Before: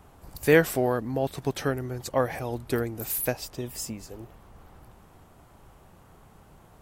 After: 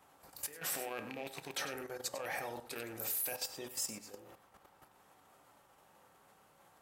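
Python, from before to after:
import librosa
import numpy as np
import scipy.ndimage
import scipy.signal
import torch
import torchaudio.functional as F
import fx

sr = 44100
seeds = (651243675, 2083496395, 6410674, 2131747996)

p1 = fx.rattle_buzz(x, sr, strikes_db=-29.0, level_db=-25.0)
p2 = fx.over_compress(p1, sr, threshold_db=-30.0, ratio=-1.0)
p3 = p2 + fx.echo_single(p2, sr, ms=97, db=-11.5, dry=0)
p4 = fx.rev_fdn(p3, sr, rt60_s=0.62, lf_ratio=0.8, hf_ratio=0.4, size_ms=11.0, drr_db=5.0)
p5 = fx.level_steps(p4, sr, step_db=11)
p6 = fx.highpass(p5, sr, hz=840.0, slope=6)
y = F.gain(torch.from_numpy(p6), -3.0).numpy()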